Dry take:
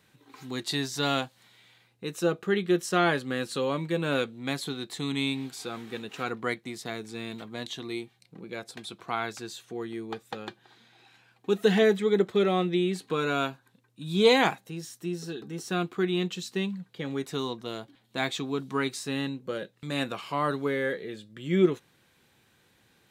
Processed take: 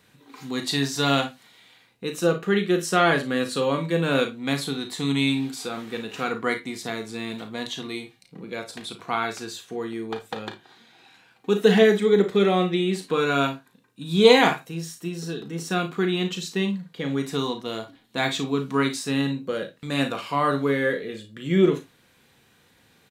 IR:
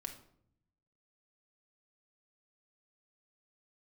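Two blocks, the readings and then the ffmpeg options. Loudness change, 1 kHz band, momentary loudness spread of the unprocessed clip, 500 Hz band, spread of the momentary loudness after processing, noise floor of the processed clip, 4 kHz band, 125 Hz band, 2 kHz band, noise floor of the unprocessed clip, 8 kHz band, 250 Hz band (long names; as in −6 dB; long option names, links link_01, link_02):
+5.0 dB, +5.5 dB, 15 LU, +5.0 dB, 15 LU, −60 dBFS, +5.0 dB, +5.5 dB, +5.0 dB, −66 dBFS, +5.0 dB, +5.0 dB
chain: -filter_complex "[0:a]aecho=1:1:36|55:0.355|0.224,asplit=2[link_01][link_02];[1:a]atrim=start_sample=2205,atrim=end_sample=3969[link_03];[link_02][link_03]afir=irnorm=-1:irlink=0,volume=3.5dB[link_04];[link_01][link_04]amix=inputs=2:normalize=0,volume=-1.5dB"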